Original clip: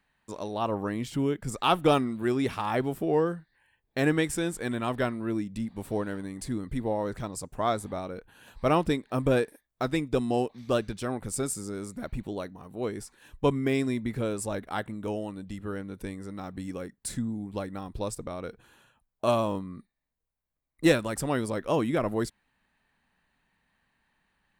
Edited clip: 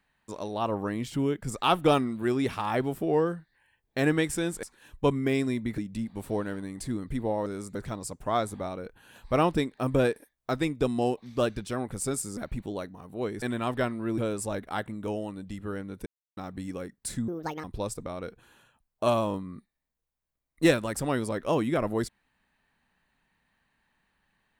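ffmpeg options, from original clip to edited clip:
ffmpeg -i in.wav -filter_complex "[0:a]asplit=12[link_01][link_02][link_03][link_04][link_05][link_06][link_07][link_08][link_09][link_10][link_11][link_12];[link_01]atrim=end=4.632[link_13];[link_02]atrim=start=13.028:end=14.182[link_14];[link_03]atrim=start=5.388:end=7.072[link_15];[link_04]atrim=start=11.688:end=11.982[link_16];[link_05]atrim=start=7.068:end=11.692[link_17];[link_06]atrim=start=11.978:end=13.032[link_18];[link_07]atrim=start=4.628:end=5.392[link_19];[link_08]atrim=start=14.178:end=16.06,asetpts=PTS-STARTPTS,afade=type=out:start_time=1.878:duration=0.004:curve=hsin[link_20];[link_09]atrim=start=16.06:end=16.37,asetpts=PTS-STARTPTS,volume=0[link_21];[link_10]atrim=start=16.37:end=17.284,asetpts=PTS-STARTPTS,afade=type=in:duration=0.004:curve=hsin[link_22];[link_11]atrim=start=17.28:end=17.85,asetpts=PTS-STARTPTS,asetrate=70119,aresample=44100,atrim=end_sample=15809,asetpts=PTS-STARTPTS[link_23];[link_12]atrim=start=17.846[link_24];[link_13][link_14]acrossfade=duration=0.004:curve1=hsin:curve2=hsin[link_25];[link_25][link_15]acrossfade=duration=0.004:curve1=hsin:curve2=hsin[link_26];[link_26][link_16]acrossfade=duration=0.004:curve1=hsin:curve2=hsin[link_27];[link_27][link_17]acrossfade=duration=0.004:curve1=hsin:curve2=hsin[link_28];[link_28][link_18]acrossfade=duration=0.004:curve1=hsin:curve2=hsin[link_29];[link_29][link_19]acrossfade=duration=0.004:curve1=hsin:curve2=hsin[link_30];[link_20][link_21][link_22]concat=n=3:v=0:a=1[link_31];[link_30][link_31]acrossfade=duration=0.004:curve1=hsin:curve2=hsin[link_32];[link_32][link_23]acrossfade=duration=0.004:curve1=hsin:curve2=hsin[link_33];[link_33][link_24]acrossfade=duration=0.004:curve1=hsin:curve2=hsin" out.wav

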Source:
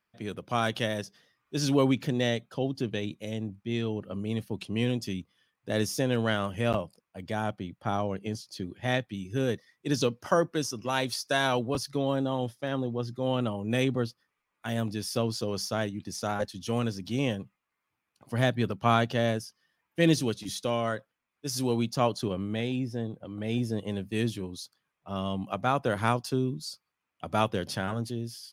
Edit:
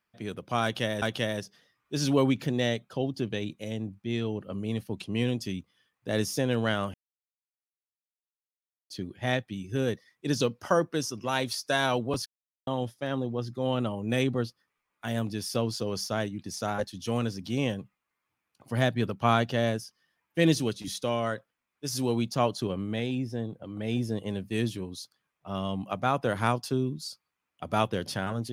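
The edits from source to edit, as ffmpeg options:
ffmpeg -i in.wav -filter_complex "[0:a]asplit=6[link_01][link_02][link_03][link_04][link_05][link_06];[link_01]atrim=end=1.022[link_07];[link_02]atrim=start=0.628:end=6.55,asetpts=PTS-STARTPTS,afade=type=out:start_time=5.918:duration=0.004:curve=hsin[link_08];[link_03]atrim=start=6.55:end=8.51,asetpts=PTS-STARTPTS,volume=0[link_09];[link_04]atrim=start=8.51:end=11.87,asetpts=PTS-STARTPTS,afade=type=in:duration=0.004:curve=hsin,afade=type=out:start_time=3.356:duration=0.004:curve=hsin[link_10];[link_05]atrim=start=11.87:end=12.28,asetpts=PTS-STARTPTS,volume=0[link_11];[link_06]atrim=start=12.28,asetpts=PTS-STARTPTS,afade=type=in:duration=0.004:curve=hsin[link_12];[link_08][link_09][link_10][link_11][link_12]concat=n=5:v=0:a=1[link_13];[link_07][link_13]acrossfade=duration=0.004:curve1=hsin:curve2=hsin" out.wav

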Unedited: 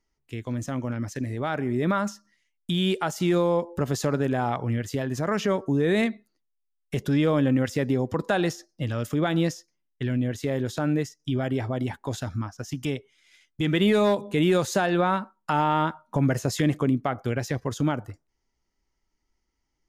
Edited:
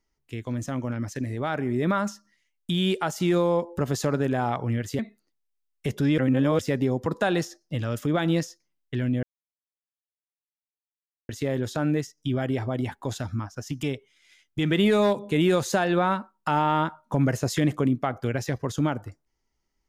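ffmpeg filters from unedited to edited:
ffmpeg -i in.wav -filter_complex "[0:a]asplit=5[link_01][link_02][link_03][link_04][link_05];[link_01]atrim=end=4.992[link_06];[link_02]atrim=start=6.068:end=7.262[link_07];[link_03]atrim=start=7.258:end=7.672,asetpts=PTS-STARTPTS,areverse[link_08];[link_04]atrim=start=7.668:end=10.31,asetpts=PTS-STARTPTS,afade=type=out:start_time=2.638:duration=0.004:curve=hsin,apad=pad_dur=2.06[link_09];[link_05]atrim=start=10.31,asetpts=PTS-STARTPTS,afade=type=in:duration=0.004:curve=hsin[link_10];[link_06][link_07]acrossfade=duration=0.004:curve1=hsin:curve2=hsin[link_11];[link_11][link_08]acrossfade=duration=0.004:curve1=hsin:curve2=hsin[link_12];[link_09][link_10]concat=n=2:v=0:a=1[link_13];[link_12][link_13]acrossfade=duration=0.004:curve1=hsin:curve2=hsin" out.wav

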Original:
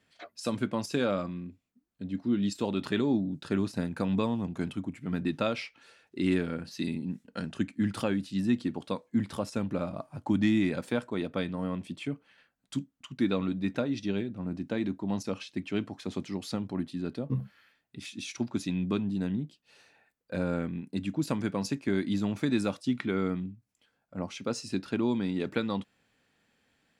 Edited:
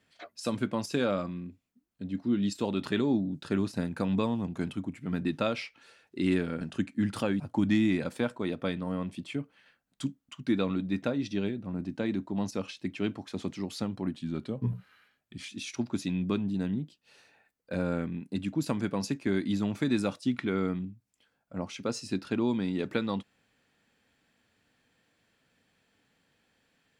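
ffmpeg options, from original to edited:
ffmpeg -i in.wav -filter_complex "[0:a]asplit=5[link_01][link_02][link_03][link_04][link_05];[link_01]atrim=end=6.612[link_06];[link_02]atrim=start=7.418:end=8.212[link_07];[link_03]atrim=start=10.118:end=16.854[link_08];[link_04]atrim=start=16.85:end=18.1,asetpts=PTS-STARTPTS,asetrate=40572,aresample=44100,atrim=end_sample=59918,asetpts=PTS-STARTPTS[link_09];[link_05]atrim=start=18.096[link_10];[link_06][link_07]acrossfade=duration=0.004:curve1=hsin:curve2=hsin[link_11];[link_11][link_08]acrossfade=duration=0.004:curve1=hsin:curve2=hsin[link_12];[link_12][link_09]acrossfade=duration=0.004:curve1=hsin:curve2=hsin[link_13];[link_13][link_10]acrossfade=duration=0.004:curve1=hsin:curve2=hsin" out.wav

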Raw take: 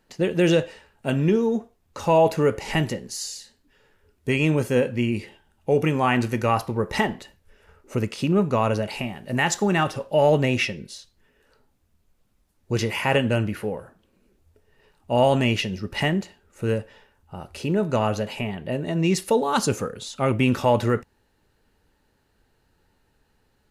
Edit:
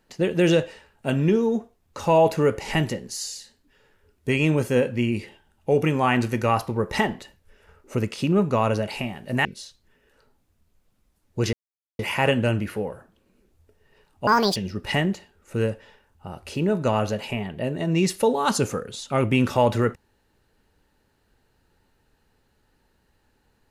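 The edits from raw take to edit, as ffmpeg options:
ffmpeg -i in.wav -filter_complex "[0:a]asplit=5[link_01][link_02][link_03][link_04][link_05];[link_01]atrim=end=9.452[link_06];[link_02]atrim=start=10.778:end=12.86,asetpts=PTS-STARTPTS,afade=type=out:start_time=2.078:duration=0.004:curve=hsin,apad=pad_dur=0.46[link_07];[link_03]atrim=start=12.86:end=15.144,asetpts=PTS-STARTPTS,afade=type=in:duration=0.004:curve=hsin[link_08];[link_04]atrim=start=15.14:end=15.64,asetpts=PTS-STARTPTS,asetrate=75852,aresample=44100[link_09];[link_05]atrim=start=15.636[link_10];[link_07][link_08]concat=n=2:v=0:a=1[link_11];[link_06][link_11]acrossfade=duration=0.004:curve1=hsin:curve2=hsin[link_12];[link_12][link_09]acrossfade=duration=0.004:curve1=hsin:curve2=hsin[link_13];[link_13][link_10]acrossfade=duration=0.004:curve1=hsin:curve2=hsin" out.wav

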